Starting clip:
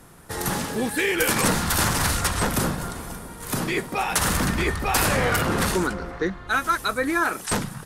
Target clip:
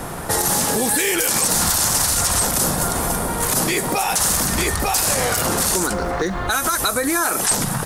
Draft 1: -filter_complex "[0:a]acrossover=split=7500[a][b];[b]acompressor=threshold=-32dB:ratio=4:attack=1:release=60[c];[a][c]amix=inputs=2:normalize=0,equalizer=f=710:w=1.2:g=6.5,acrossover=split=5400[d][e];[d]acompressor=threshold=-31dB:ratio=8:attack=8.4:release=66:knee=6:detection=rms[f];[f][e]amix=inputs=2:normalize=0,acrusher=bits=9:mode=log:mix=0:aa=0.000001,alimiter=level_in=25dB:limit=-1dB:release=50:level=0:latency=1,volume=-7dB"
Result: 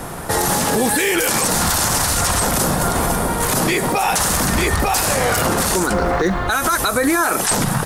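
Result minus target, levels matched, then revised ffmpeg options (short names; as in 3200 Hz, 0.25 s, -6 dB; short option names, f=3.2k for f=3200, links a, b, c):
compressor: peak gain reduction -6 dB
-filter_complex "[0:a]acrossover=split=7500[a][b];[b]acompressor=threshold=-32dB:ratio=4:attack=1:release=60[c];[a][c]amix=inputs=2:normalize=0,equalizer=f=710:w=1.2:g=6.5,acrossover=split=5400[d][e];[d]acompressor=threshold=-38dB:ratio=8:attack=8.4:release=66:knee=6:detection=rms[f];[f][e]amix=inputs=2:normalize=0,acrusher=bits=9:mode=log:mix=0:aa=0.000001,alimiter=level_in=25dB:limit=-1dB:release=50:level=0:latency=1,volume=-7dB"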